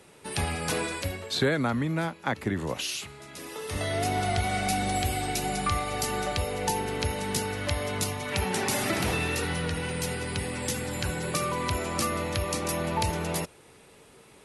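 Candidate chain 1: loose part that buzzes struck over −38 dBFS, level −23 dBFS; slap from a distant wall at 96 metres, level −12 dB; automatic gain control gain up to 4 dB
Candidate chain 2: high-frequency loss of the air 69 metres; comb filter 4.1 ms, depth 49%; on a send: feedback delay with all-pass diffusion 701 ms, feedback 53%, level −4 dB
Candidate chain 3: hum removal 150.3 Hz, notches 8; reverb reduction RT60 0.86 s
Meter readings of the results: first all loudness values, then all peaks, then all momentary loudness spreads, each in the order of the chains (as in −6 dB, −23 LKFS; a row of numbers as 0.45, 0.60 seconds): −24.5, −27.5, −31.0 LKFS; −7.5, −12.0, −12.5 dBFS; 6, 6, 5 LU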